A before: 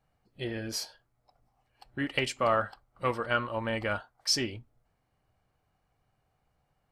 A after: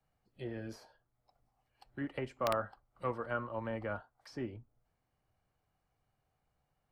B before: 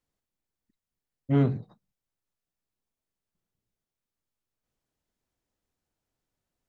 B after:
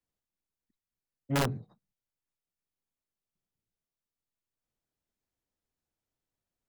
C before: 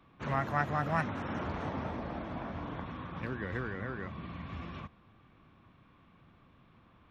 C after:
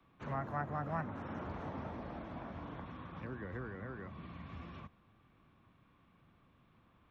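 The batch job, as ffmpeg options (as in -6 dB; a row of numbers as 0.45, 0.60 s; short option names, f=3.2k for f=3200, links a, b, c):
-filter_complex "[0:a]acrossover=split=140|340|1600[a][b][c][d];[d]acompressor=threshold=-53dB:ratio=8[e];[a][b][c][e]amix=inputs=4:normalize=0,aeval=exprs='(mod(6.31*val(0)+1,2)-1)/6.31':c=same,volume=-6dB"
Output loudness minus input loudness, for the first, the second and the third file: -8.5, -5.0, -7.0 LU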